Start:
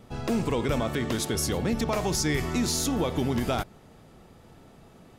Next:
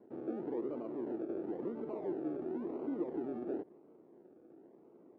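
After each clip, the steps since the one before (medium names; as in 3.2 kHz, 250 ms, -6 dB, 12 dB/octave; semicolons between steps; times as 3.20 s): peak limiter -24 dBFS, peak gain reduction 7.5 dB; decimation with a swept rate 35×, swing 60% 0.96 Hz; ladder band-pass 380 Hz, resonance 60%; trim +4 dB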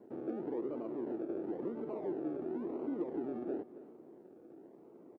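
feedback delay 270 ms, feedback 37%, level -18 dB; in parallel at -2.5 dB: compression, threshold -47 dBFS, peak gain reduction 14.5 dB; on the sum: hard clipper -26 dBFS, distortion -48 dB; trim -1.5 dB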